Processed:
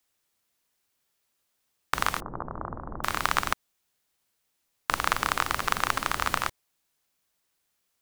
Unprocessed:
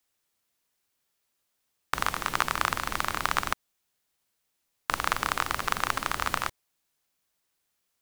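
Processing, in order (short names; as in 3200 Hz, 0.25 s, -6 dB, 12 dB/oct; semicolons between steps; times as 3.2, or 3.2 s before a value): 2.2–3.04 Gaussian blur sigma 9.9 samples; gain +1.5 dB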